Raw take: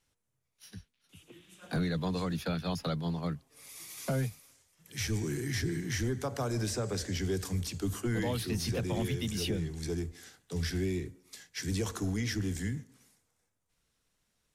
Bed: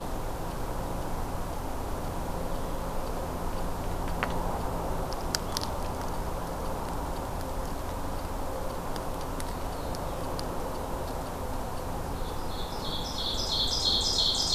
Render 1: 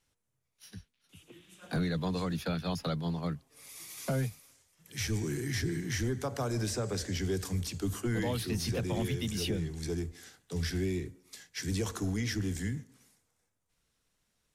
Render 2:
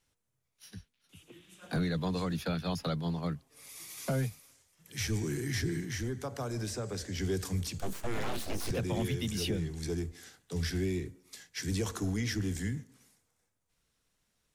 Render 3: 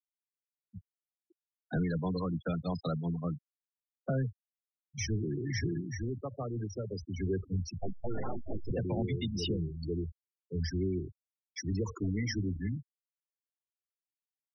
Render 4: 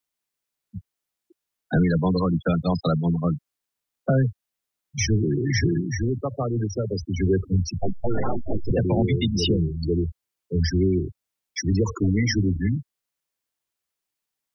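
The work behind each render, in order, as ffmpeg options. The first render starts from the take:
-af anull
-filter_complex "[0:a]asettb=1/sr,asplit=3[a][b][c];[a]atrim=end=7.784[d];[b]atrim=start=7.78:end=8.71,asetpts=PTS-STARTPTS,afade=t=in:d=0.004:c=qsin,afade=t=out:st=0.926:d=0.004:c=qsin,aeval=exprs='abs(val(0))':c=same[e];[c]atrim=start=8.706[f];[d][e]acrossfade=d=0.004:c1=hsin:c2=qsin[g];[g][f]acrossfade=d=0.004:c1=qsin:c2=hsin,asplit=3[h][i][j];[h]atrim=end=5.852[k];[i]atrim=start=5.848:end=7.182,asetpts=PTS-STARTPTS,volume=-3.5dB[l];[j]atrim=start=7.178[m];[k][l]acrossfade=d=0.004:c1=hsin:c2=hsin[n];[n][m]acrossfade=d=0.004:c1=hsin:c2=hsin"
-af "afftfilt=real='re*gte(hypot(re,im),0.0355)':imag='im*gte(hypot(re,im),0.0355)':win_size=1024:overlap=0.75,highshelf=f=3.7k:g=5"
-af "volume=11.5dB"

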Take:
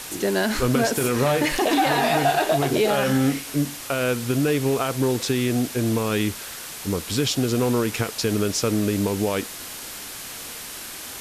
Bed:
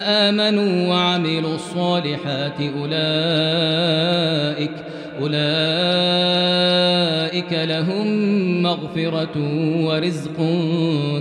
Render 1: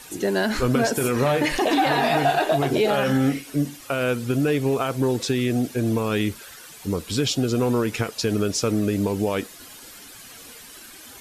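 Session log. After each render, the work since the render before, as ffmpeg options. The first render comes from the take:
-af "afftdn=nr=11:nf=-36"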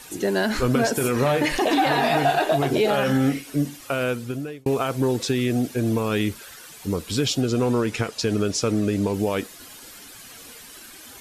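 -filter_complex "[0:a]asettb=1/sr,asplit=3[a][b][c];[a]atrim=end=7.414[d];[b]atrim=start=7.41:end=9.14,asetpts=PTS-STARTPTS,afade=t=in:d=0.004:c=qsin,afade=t=out:st=1.726:d=0.004:c=qsin,lowpass=10k[e];[c]atrim=start=9.136[f];[d][e]acrossfade=d=0.004:c1=hsin:c2=qsin[g];[g][f]acrossfade=d=0.004:c1=qsin:c2=hsin,asplit=2[h][i];[h]atrim=end=4.66,asetpts=PTS-STARTPTS,afade=t=out:st=3.97:d=0.69[j];[i]atrim=start=4.66,asetpts=PTS-STARTPTS,afade=t=in:d=0.004:c=hsin[k];[j][k]concat=n=2:v=0:a=1"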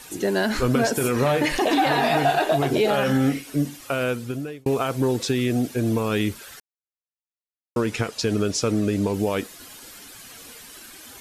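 -filter_complex "[0:a]asplit=3[a][b][c];[a]atrim=end=6.6,asetpts=PTS-STARTPTS,afade=t=out:st=6.596:d=0.004:c=hsin[d];[b]atrim=start=6.6:end=7.76,asetpts=PTS-STARTPTS,volume=0[e];[c]atrim=start=7.76,asetpts=PTS-STARTPTS,afade=t=in:d=0.004:c=hsin[f];[d][e][f]concat=n=3:v=0:a=1"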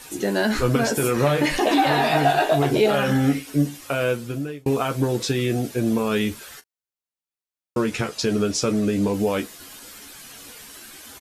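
-af "aecho=1:1:14|40:0.501|0.15"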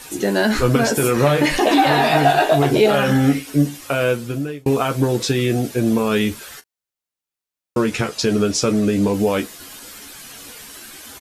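-af "volume=4dB"

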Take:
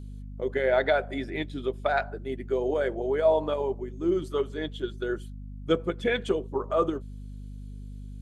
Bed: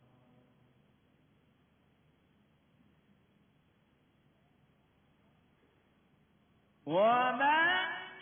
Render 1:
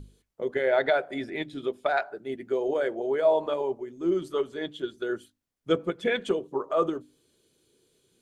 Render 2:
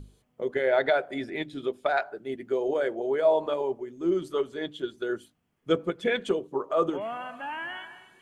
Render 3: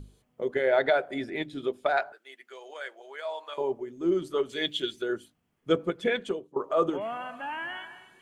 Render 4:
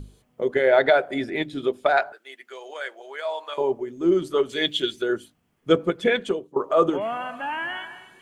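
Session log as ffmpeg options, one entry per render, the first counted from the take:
-af "bandreject=f=50:t=h:w=6,bandreject=f=100:t=h:w=6,bandreject=f=150:t=h:w=6,bandreject=f=200:t=h:w=6,bandreject=f=250:t=h:w=6,bandreject=f=300:t=h:w=6"
-filter_complex "[1:a]volume=-7.5dB[a];[0:a][a]amix=inputs=2:normalize=0"
-filter_complex "[0:a]asettb=1/sr,asplit=3[a][b][c];[a]atrim=end=2.124[d];[b]atrim=start=2.12:end=3.58,asetpts=PTS-STARTPTS,afade=t=in:d=0.004:c=qsin,afade=t=out:st=1.456:d=0.004:c=qsin,highpass=1.4k[e];[c]atrim=start=3.576[f];[d][e]acrossfade=d=0.004:c1=hsin:c2=qsin[g];[g][f]acrossfade=d=0.004:c1=qsin:c2=hsin,asettb=1/sr,asplit=3[h][i][j];[h]atrim=end=4.494[k];[i]atrim=start=4.49:end=5.02,asetpts=PTS-STARTPTS,afade=t=in:d=0.004:c=qsin,afade=t=out:st=0.526:d=0.004:c=qsin,highshelf=f=1.7k:t=q:w=1.5:g=10[l];[j]atrim=start=5.016[m];[k][l]acrossfade=d=0.004:c1=hsin:c2=qsin[n];[n][m]acrossfade=d=0.004:c1=qsin:c2=hsin,asplit=2[o][p];[o]atrim=end=6.56,asetpts=PTS-STARTPTS,afade=t=out:st=6.06:d=0.5:silence=0.177828[q];[p]atrim=start=6.56,asetpts=PTS-STARTPTS,afade=t=in:d=0.004:c=hsin:silence=0.177828[r];[q][r]concat=n=2:v=0:a=1"
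-af "volume=6dB"

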